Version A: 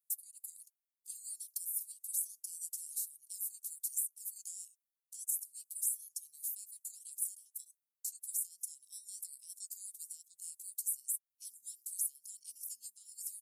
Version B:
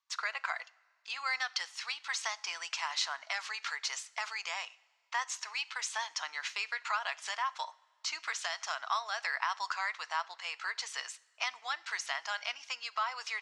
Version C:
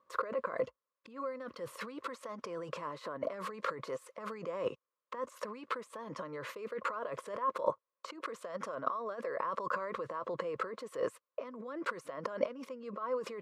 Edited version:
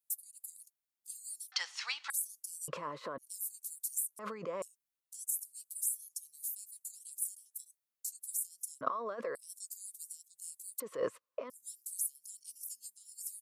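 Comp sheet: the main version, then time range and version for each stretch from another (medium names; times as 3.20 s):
A
1.52–2.10 s: from B
2.68–3.18 s: from C
4.19–4.62 s: from C
8.81–9.35 s: from C
10.80–11.50 s: from C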